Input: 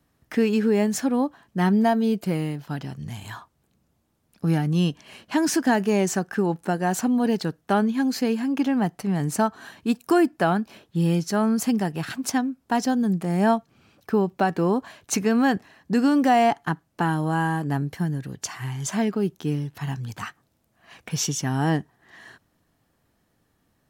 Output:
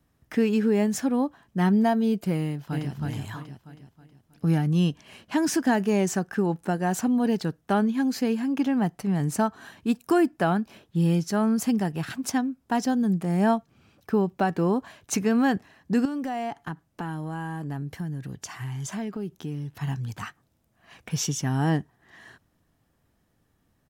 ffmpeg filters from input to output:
-filter_complex "[0:a]asplit=2[s0][s1];[s1]afade=t=in:st=2.4:d=0.01,afade=t=out:st=2.93:d=0.01,aecho=0:1:320|640|960|1280|1600|1920:0.794328|0.357448|0.160851|0.0723832|0.0325724|0.0146576[s2];[s0][s2]amix=inputs=2:normalize=0,asettb=1/sr,asplit=3[s3][s4][s5];[s3]atrim=end=16.054[s6];[s4]atrim=start=16.05:end=19.79,asetpts=PTS-STARTPTS,afade=t=in:d=0.004:c=qsin,afade=t=out:st=3.736:d=0.004:c=qsin,acompressor=threshold=0.0316:ratio=2.5:attack=3.2:release=140:knee=1:detection=peak[s7];[s5]atrim=start=19.786[s8];[s6][s7]acrossfade=d=0.004:c1=hsin:c2=qsin[s9];[s9][s8]acrossfade=d=0.004:c1=qsin:c2=hsin,lowshelf=f=150:g=6,bandreject=f=4300:w=26,volume=0.708"

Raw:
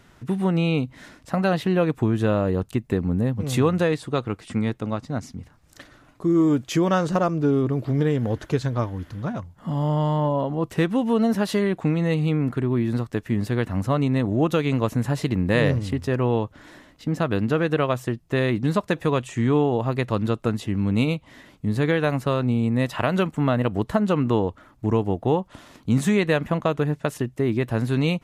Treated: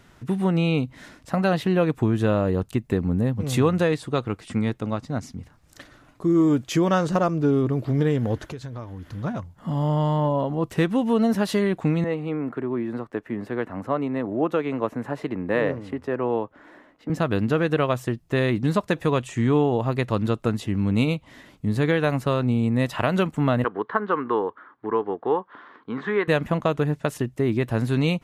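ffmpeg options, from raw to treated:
-filter_complex "[0:a]asettb=1/sr,asplit=3[s0][s1][s2];[s0]atrim=end=8.504[s3];[s1]atrim=start=8.5:end=9.1,asetpts=PTS-STARTPTS,afade=t=in:d=0.004:c=qsin,afade=t=out:st=0.596:d=0.004:c=qsin,acompressor=threshold=0.0224:ratio=4:attack=3.2:release=140:knee=1:detection=peak[s4];[s2]atrim=start=9.096[s5];[s3][s4]acrossfade=d=0.004:c1=hsin:c2=qsin[s6];[s6][s5]acrossfade=d=0.004:c1=qsin:c2=hsin,asettb=1/sr,asplit=3[s7][s8][s9];[s7]atrim=end=12.044[s10];[s8]atrim=start=12.04:end=17.1,asetpts=PTS-STARTPTS,afade=t=in:d=0.004:c=qsin,afade=t=out:st=5.056:d=0.004:c=qsin,acrossover=split=240 2200:gain=0.158 1 0.158[s11][s12][s13];[s11][s12][s13]amix=inputs=3:normalize=0[s14];[s9]atrim=start=17.096[s15];[s10][s14]acrossfade=d=0.004:c1=hsin:c2=qsin[s16];[s16][s15]acrossfade=d=0.004:c1=qsin:c2=hsin,asettb=1/sr,asplit=3[s17][s18][s19];[s17]atrim=end=23.644[s20];[s18]atrim=start=23.64:end=26.28,asetpts=PTS-STARTPTS,afade=t=in:d=0.004:c=qsin,afade=t=out:st=2.636:d=0.004:c=qsin,highpass=400,equalizer=f=420:t=q:w=4:g=5,equalizer=f=620:t=q:w=4:g=-9,equalizer=f=1100:t=q:w=4:g=8,equalizer=f=1600:t=q:w=4:g=8,equalizer=f=2600:t=q:w=4:g=-10,lowpass=f=2900:w=0.5412,lowpass=f=2900:w=1.3066[s21];[s19]atrim=start=26.276[s22];[s20][s21]acrossfade=d=0.004:c1=hsin:c2=qsin[s23];[s23][s22]acrossfade=d=0.004:c1=qsin:c2=hsin"

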